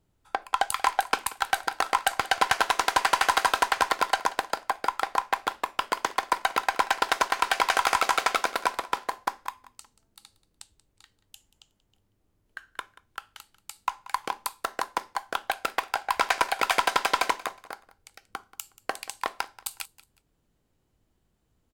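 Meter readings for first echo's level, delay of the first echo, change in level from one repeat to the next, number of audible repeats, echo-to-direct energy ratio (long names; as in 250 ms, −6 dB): −19.0 dB, 183 ms, −11.5 dB, 2, −18.5 dB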